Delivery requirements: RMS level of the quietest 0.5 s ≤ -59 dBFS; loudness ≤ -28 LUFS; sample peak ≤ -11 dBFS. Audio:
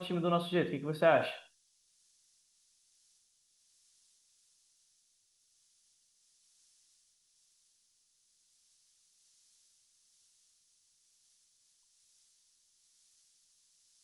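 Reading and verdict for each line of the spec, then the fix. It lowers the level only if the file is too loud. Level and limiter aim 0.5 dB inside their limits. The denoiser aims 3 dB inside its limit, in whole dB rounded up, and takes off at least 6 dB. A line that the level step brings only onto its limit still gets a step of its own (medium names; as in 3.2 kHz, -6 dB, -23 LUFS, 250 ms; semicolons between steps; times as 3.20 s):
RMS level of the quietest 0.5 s -73 dBFS: pass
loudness -31.5 LUFS: pass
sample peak -12.5 dBFS: pass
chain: none needed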